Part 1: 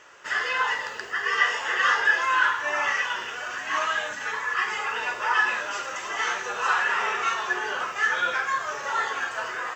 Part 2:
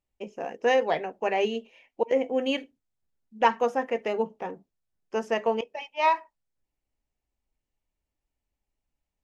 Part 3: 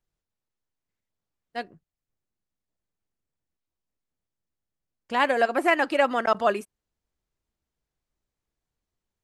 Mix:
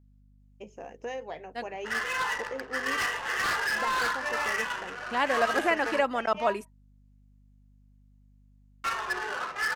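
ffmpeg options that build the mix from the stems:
-filter_complex "[0:a]aeval=exprs='0.119*(abs(mod(val(0)/0.119+3,4)-2)-1)':c=same,adynamicsmooth=sensitivity=4.5:basefreq=590,adelay=1600,volume=-4dB,asplit=3[a][b][c];[a]atrim=end=5.99,asetpts=PTS-STARTPTS,afade=t=out:st=5.986:d=0.004:c=hsin[d];[b]atrim=start=5.99:end=8.84,asetpts=PTS-STARTPTS,volume=0[e];[c]atrim=start=8.84,asetpts=PTS-STARTPTS,afade=t=in:d=0.004:c=hsin[f];[d][e][f]concat=n=3:v=0:a=1[g];[1:a]acompressor=threshold=-36dB:ratio=2,equalizer=f=6.6k:t=o:w=0.25:g=7.5,adelay=400,volume=-5dB[h];[2:a]aeval=exprs='val(0)+0.00224*(sin(2*PI*50*n/s)+sin(2*PI*2*50*n/s)/2+sin(2*PI*3*50*n/s)/3+sin(2*PI*4*50*n/s)/4+sin(2*PI*5*50*n/s)/5)':c=same,volume=-4.5dB[i];[g][h][i]amix=inputs=3:normalize=0"

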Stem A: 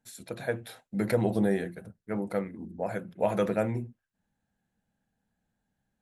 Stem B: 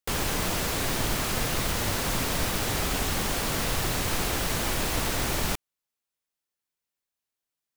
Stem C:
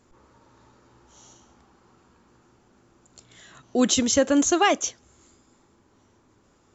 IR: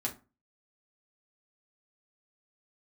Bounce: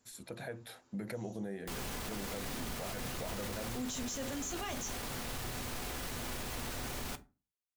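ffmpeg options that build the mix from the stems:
-filter_complex "[0:a]volume=-3.5dB[a];[1:a]adelay=1600,volume=-15.5dB,asplit=2[b][c];[c]volume=-6dB[d];[2:a]highshelf=f=2.7k:g=10.5,volume=-18dB,asplit=2[e][f];[f]volume=-6.5dB[g];[a][e]amix=inputs=2:normalize=0,acompressor=threshold=-37dB:ratio=6,volume=0dB[h];[3:a]atrim=start_sample=2205[i];[d][g]amix=inputs=2:normalize=0[j];[j][i]afir=irnorm=-1:irlink=0[k];[b][h][k]amix=inputs=3:normalize=0,alimiter=level_in=6.5dB:limit=-24dB:level=0:latency=1:release=14,volume=-6.5dB"

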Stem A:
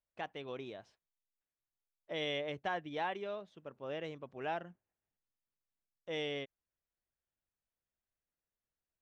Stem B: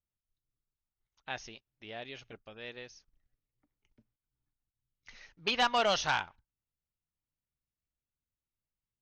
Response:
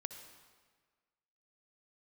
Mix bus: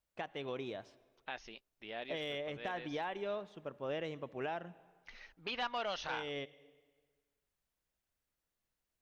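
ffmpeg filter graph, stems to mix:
-filter_complex "[0:a]asoftclip=type=hard:threshold=-25.5dB,acompressor=threshold=-41dB:ratio=1.5,volume=2.5dB,asplit=2[a][b];[b]volume=-9dB[c];[1:a]lowpass=4k,equalizer=f=120:t=o:w=0.84:g=-11.5,volume=0dB[d];[2:a]atrim=start_sample=2205[e];[c][e]afir=irnorm=-1:irlink=0[f];[a][d][f]amix=inputs=3:normalize=0,alimiter=level_in=5dB:limit=-24dB:level=0:latency=1:release=233,volume=-5dB"

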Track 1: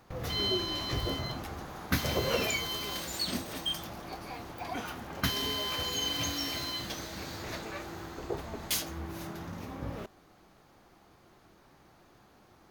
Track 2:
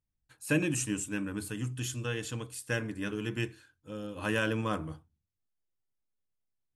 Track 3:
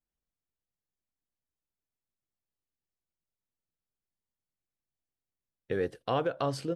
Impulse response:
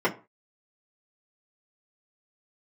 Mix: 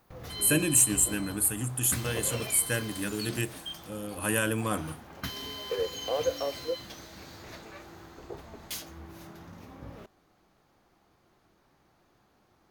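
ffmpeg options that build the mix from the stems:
-filter_complex "[0:a]volume=-6.5dB[a];[1:a]aexciter=amount=4.6:drive=9.7:freq=8k,volume=1.5dB[b];[2:a]highpass=f=500:t=q:w=4.9,volume=-9.5dB[c];[a][b][c]amix=inputs=3:normalize=0"

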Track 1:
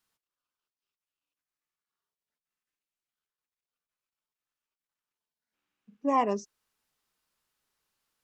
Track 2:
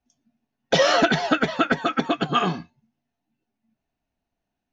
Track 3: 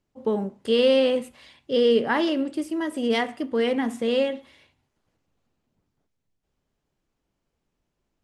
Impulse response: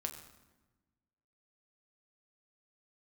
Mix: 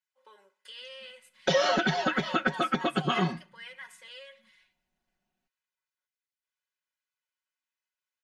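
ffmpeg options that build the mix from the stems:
-filter_complex "[1:a]acompressor=threshold=-19dB:ratio=6,adelay=750,volume=-5dB,asplit=2[a][b];[b]volume=-22.5dB[c];[2:a]aecho=1:1:2:0.63,acompressor=threshold=-23dB:ratio=3,highpass=f=1.6k:t=q:w=1.5,volume=-13.5dB,asplit=2[d][e];[e]volume=-17.5dB[f];[3:a]atrim=start_sample=2205[g];[c][f]amix=inputs=2:normalize=0[h];[h][g]afir=irnorm=-1:irlink=0[i];[a][d][i]amix=inputs=3:normalize=0,aecho=1:1:5.4:0.79"

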